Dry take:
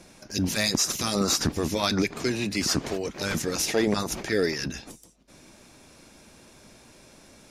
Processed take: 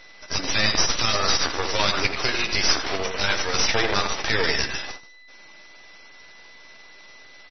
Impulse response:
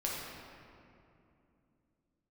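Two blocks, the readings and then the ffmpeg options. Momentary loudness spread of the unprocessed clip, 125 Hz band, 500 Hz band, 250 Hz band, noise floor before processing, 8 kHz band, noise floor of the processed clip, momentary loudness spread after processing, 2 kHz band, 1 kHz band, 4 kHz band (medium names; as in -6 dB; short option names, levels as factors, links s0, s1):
7 LU, -2.0 dB, 0.0 dB, -6.5 dB, -54 dBFS, +1.0 dB, -47 dBFS, 7 LU, +8.5 dB, +7.5 dB, +7.0 dB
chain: -filter_complex "[0:a]highpass=740,asplit=2[s0][s1];[s1]adelay=15,volume=0.266[s2];[s0][s2]amix=inputs=2:normalize=0,asplit=2[s3][s4];[s4]adelay=84,lowpass=f=1800:p=1,volume=0.562,asplit=2[s5][s6];[s6]adelay=84,lowpass=f=1800:p=1,volume=0.28,asplit=2[s7][s8];[s8]adelay=84,lowpass=f=1800:p=1,volume=0.28,asplit=2[s9][s10];[s10]adelay=84,lowpass=f=1800:p=1,volume=0.28[s11];[s5][s7][s9][s11]amix=inputs=4:normalize=0[s12];[s3][s12]amix=inputs=2:normalize=0,tremolo=f=20:d=0.333,aeval=exprs='val(0)+0.00251*sin(2*PI*2000*n/s)':c=same,agate=range=0.355:threshold=0.00398:ratio=16:detection=peak,aeval=exprs='max(val(0),0)':c=same,asplit=2[s13][s14];[s14]acompressor=threshold=0.00891:ratio=16,volume=1.26[s15];[s13][s15]amix=inputs=2:normalize=0,alimiter=level_in=5.31:limit=0.891:release=50:level=0:latency=1,volume=0.75" -ar 24000 -c:a libmp3lame -b:a 24k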